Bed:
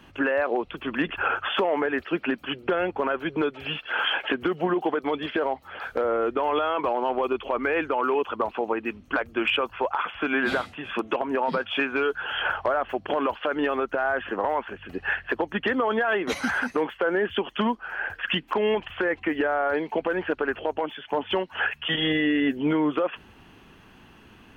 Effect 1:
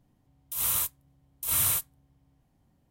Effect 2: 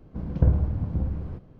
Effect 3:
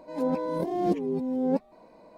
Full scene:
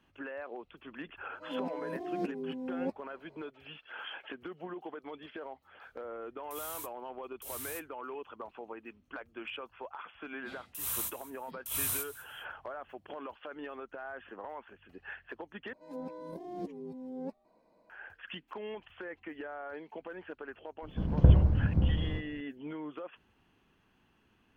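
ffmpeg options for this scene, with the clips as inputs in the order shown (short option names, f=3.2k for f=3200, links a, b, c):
-filter_complex "[3:a]asplit=2[a][b];[1:a]asplit=2[c][d];[0:a]volume=-18dB[e];[a]highpass=140[f];[c]asoftclip=type=tanh:threshold=-27dB[g];[d]aecho=1:1:205|410:0.119|0.0309[h];[e]asplit=2[i][j];[i]atrim=end=15.734[k];[b]atrim=end=2.17,asetpts=PTS-STARTPTS,volume=-14.5dB[l];[j]atrim=start=17.896[m];[f]atrim=end=2.17,asetpts=PTS-STARTPTS,volume=-9.5dB,afade=t=in:d=0.004:c=hsin,afade=t=out:st=2.166:d=0.004:c=hsin,adelay=1330[n];[g]atrim=end=2.9,asetpts=PTS-STARTPTS,volume=-12dB,afade=t=in:d=0.004:c=hsin,afade=t=out:st=2.896:d=0.004:c=hsin,adelay=5990[o];[h]atrim=end=2.9,asetpts=PTS-STARTPTS,volume=-8dB,afade=t=in:d=0.004:c=hsin,afade=t=out:st=2.896:d=0.004:c=hsin,adelay=10230[p];[2:a]atrim=end=1.59,asetpts=PTS-STARTPTS,afade=t=in:d=0.004:c=hsin,afade=t=out:st=1.586:d=0.004:c=hsin,adelay=20820[q];[k][l]acrossfade=d=0.004:c1=hsin:c2=hsin[r];[r][m]acrossfade=d=0.004:c1=hsin:c2=hsin[s];[s][n][o][p][q]amix=inputs=5:normalize=0"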